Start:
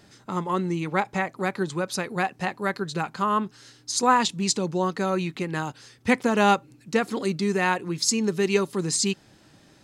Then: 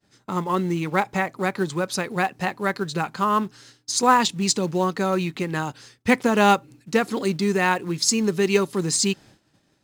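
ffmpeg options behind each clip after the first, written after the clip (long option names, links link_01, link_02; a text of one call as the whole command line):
ffmpeg -i in.wav -filter_complex "[0:a]agate=range=-33dB:threshold=-45dB:ratio=3:detection=peak,asplit=2[link_01][link_02];[link_02]acrusher=bits=3:mode=log:mix=0:aa=0.000001,volume=-9.5dB[link_03];[link_01][link_03]amix=inputs=2:normalize=0" out.wav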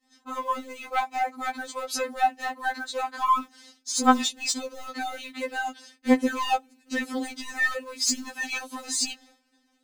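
ffmpeg -i in.wav -af "asoftclip=type=tanh:threshold=-13dB,afftfilt=real='re*3.46*eq(mod(b,12),0)':imag='im*3.46*eq(mod(b,12),0)':win_size=2048:overlap=0.75" out.wav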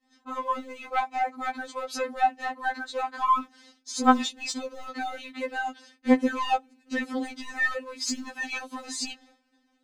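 ffmpeg -i in.wav -af "aemphasis=mode=reproduction:type=50kf" out.wav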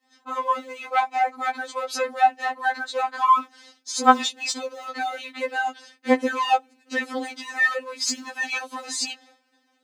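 ffmpeg -i in.wav -af "highpass=380,volume=5.5dB" out.wav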